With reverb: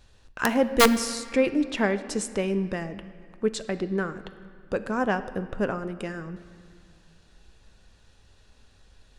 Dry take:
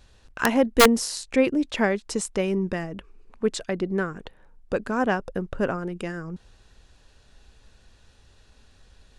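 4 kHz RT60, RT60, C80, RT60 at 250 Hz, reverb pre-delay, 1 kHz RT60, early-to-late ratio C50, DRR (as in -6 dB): 1.7 s, 2.2 s, 14.0 dB, 2.6 s, 10 ms, 2.2 s, 13.0 dB, 11.0 dB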